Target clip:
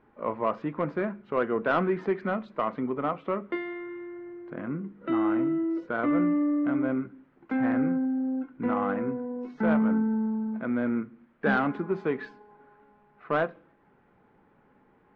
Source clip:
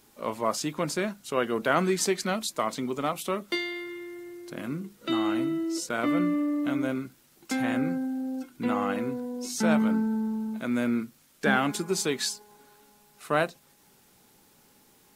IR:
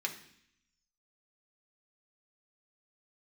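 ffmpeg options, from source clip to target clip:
-filter_complex "[0:a]lowpass=f=1.8k:w=0.5412,lowpass=f=1.8k:w=1.3066,asoftclip=type=tanh:threshold=-15.5dB,asplit=2[a][b];[1:a]atrim=start_sample=2205,asetrate=57330,aresample=44100[c];[b][c]afir=irnorm=-1:irlink=0,volume=-10dB[d];[a][d]amix=inputs=2:normalize=0"

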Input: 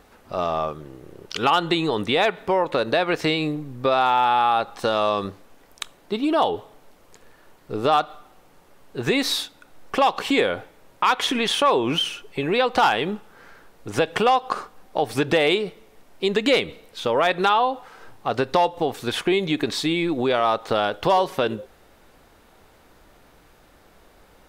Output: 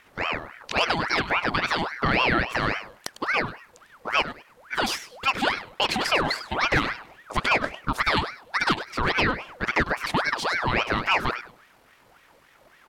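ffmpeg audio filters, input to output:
-af "atempo=1.9,aecho=1:1:101|202|303:0.237|0.0498|0.0105,aeval=exprs='val(0)*sin(2*PI*1200*n/s+1200*0.6/3.6*sin(2*PI*3.6*n/s))':c=same"

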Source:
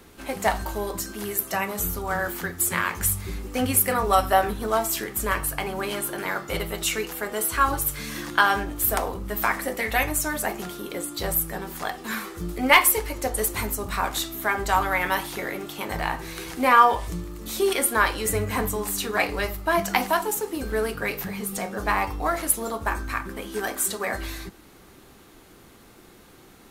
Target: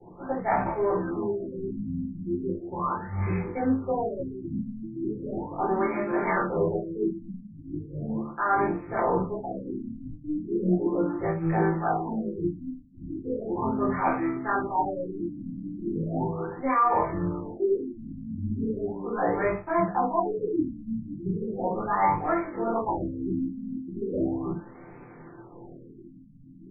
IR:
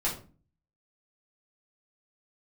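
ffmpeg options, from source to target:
-filter_complex "[0:a]highpass=f=87:w=0.5412,highpass=f=87:w=1.3066,equalizer=f=2.7k:w=0.44:g=-6,bandreject=f=50:t=h:w=6,bandreject=f=100:t=h:w=6,bandreject=f=150:t=h:w=6,bandreject=f=200:t=h:w=6,bandreject=f=250:t=h:w=6,areverse,acompressor=threshold=-32dB:ratio=16,areverse,flanger=delay=16.5:depth=7.5:speed=0.1,aeval=exprs='sgn(val(0))*max(abs(val(0))-0.00119,0)':c=same[a];[1:a]atrim=start_sample=2205,afade=t=out:st=0.13:d=0.01,atrim=end_sample=6174[b];[a][b]afir=irnorm=-1:irlink=0,afftfilt=real='re*lt(b*sr/1024,290*pow(2600/290,0.5+0.5*sin(2*PI*0.37*pts/sr)))':imag='im*lt(b*sr/1024,290*pow(2600/290,0.5+0.5*sin(2*PI*0.37*pts/sr)))':win_size=1024:overlap=0.75,volume=8dB"

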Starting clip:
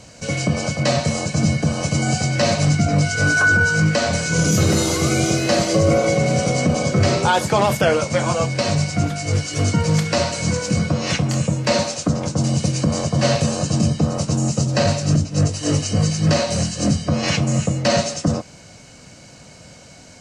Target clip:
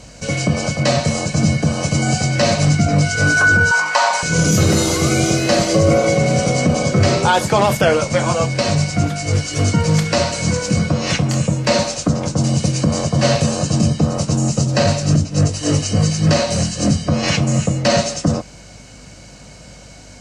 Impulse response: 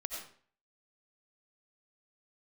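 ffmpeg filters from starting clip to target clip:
-filter_complex "[0:a]aeval=exprs='val(0)+0.00501*(sin(2*PI*50*n/s)+sin(2*PI*2*50*n/s)/2+sin(2*PI*3*50*n/s)/3+sin(2*PI*4*50*n/s)/4+sin(2*PI*5*50*n/s)/5)':c=same,asettb=1/sr,asplit=3[a][b][c];[a]atrim=end=3.714[d];[b]atrim=start=3.71:end=4.23,asetpts=PTS-STARTPTS,afade=t=in:d=0.004:c=qsin,afade=t=out:st=0.516:d=0.004:c=qsin,highpass=f=930:t=q:w=7.7[e];[c]atrim=start=4.226[f];[d][e]acrossfade=d=0.004:c1=hsin:c2=qsin[g];[g][f]acrossfade=d=0.004:c1=qsin:c2=hsin,volume=2.5dB"

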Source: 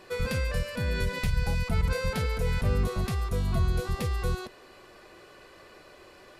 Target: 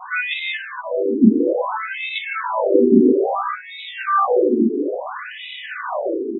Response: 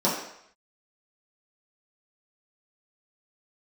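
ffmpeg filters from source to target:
-filter_complex "[0:a]bass=f=250:g=8,treble=f=4k:g=13[a];[1:a]atrim=start_sample=2205,asetrate=42777,aresample=44100[b];[a][b]afir=irnorm=-1:irlink=0,dynaudnorm=f=260:g=7:m=6.5dB,asettb=1/sr,asplit=3[c][d][e];[c]atrim=end=2.214[f];[d]atrim=start=2.21:end=3.8,asetpts=PTS-STARTPTS,afade=t=in:d=0.004:c=qsin,afade=t=out:st=1.586:d=0.004:c=qsin,asuperstop=centerf=3000:order=8:qfactor=3.5[g];[e]atrim=start=3.796[h];[f][g]acrossfade=d=0.004:c1=hsin:c2=qsin[i];[i][h]acrossfade=d=0.004:c1=qsin:c2=hsin,asplit=6[j][k][l][m][n][o];[k]adelay=279,afreqshift=62,volume=-9dB[p];[l]adelay=558,afreqshift=124,volume=-16.7dB[q];[m]adelay=837,afreqshift=186,volume=-24.5dB[r];[n]adelay=1116,afreqshift=248,volume=-32.2dB[s];[o]adelay=1395,afreqshift=310,volume=-40dB[t];[j][p][q][r][s][t]amix=inputs=6:normalize=0,asettb=1/sr,asplit=3[u][v][w];[u]atrim=end=0.574[x];[v]atrim=start=0.57:end=1.21,asetpts=PTS-STARTPTS,afade=t=in:d=0.004:c=qsin,afade=t=out:st=0.636:d=0.004:c=qsin,acrossover=split=130[y][z];[z]acompressor=threshold=-30dB:ratio=2[aa];[y][aa]amix=inputs=2:normalize=0[ab];[w]atrim=start=1.206[ac];[x][ab]acrossfade=d=0.004:c1=hsin:c2=qsin[ad];[ad][ac]acrossfade=d=0.004:c1=qsin:c2=hsin,bandreject=f=60:t=h:w=6,bandreject=f=120:t=h:w=6,bandreject=f=180:t=h:w=6,asplit=2[ae][af];[af]adelay=33,volume=-12.5dB[ag];[ae][ag]amix=inputs=2:normalize=0,alimiter=level_in=7dB:limit=-1dB:release=50:level=0:latency=1,afftfilt=real='re*between(b*sr/1024,300*pow(2800/300,0.5+0.5*sin(2*PI*0.59*pts/sr))/1.41,300*pow(2800/300,0.5+0.5*sin(2*PI*0.59*pts/sr))*1.41)':imag='im*between(b*sr/1024,300*pow(2800/300,0.5+0.5*sin(2*PI*0.59*pts/sr))/1.41,300*pow(2800/300,0.5+0.5*sin(2*PI*0.59*pts/sr))*1.41)':win_size=1024:overlap=0.75,volume=5dB"

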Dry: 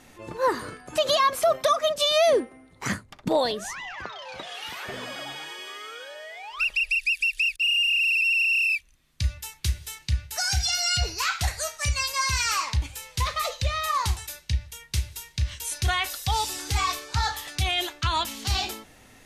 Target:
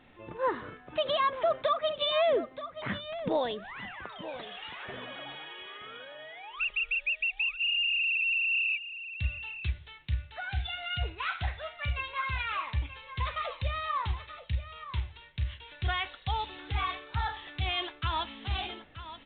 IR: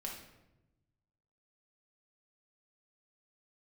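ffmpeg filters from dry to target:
-filter_complex "[0:a]asettb=1/sr,asplit=3[a][b][c];[a]atrim=end=8.724[d];[b]atrim=start=8.72:end=9.25,asetpts=PTS-STARTPTS,afade=t=in:d=0.004:c=qsin,afade=t=out:st=0.526:d=0.004:c=qsin,aeval=exprs='sgn(val(0))*max(abs(val(0))-0.00282,0)':c=same[e];[c]atrim=start=9.246[f];[d][e]acrossfade=d=0.004:c1=hsin:c2=qsin[g];[g][f]acrossfade=d=0.004:c1=qsin:c2=hsin,aecho=1:1:929:0.237,volume=-6dB" -ar 8000 -c:a pcm_alaw

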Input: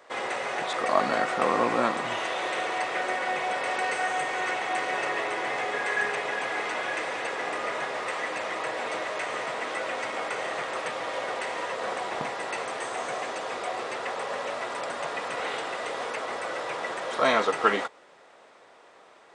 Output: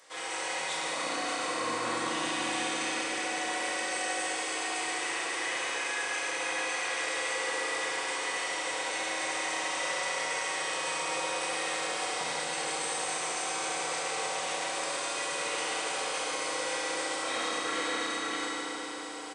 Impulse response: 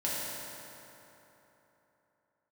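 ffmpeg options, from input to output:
-filter_complex "[0:a]crystalizer=i=8:c=0,aecho=1:1:577:0.335,areverse,acompressor=threshold=-35dB:ratio=4,areverse[a];[1:a]atrim=start_sample=2205,asetrate=23373,aresample=44100[b];[a][b]afir=irnorm=-1:irlink=0,volume=-8.5dB"

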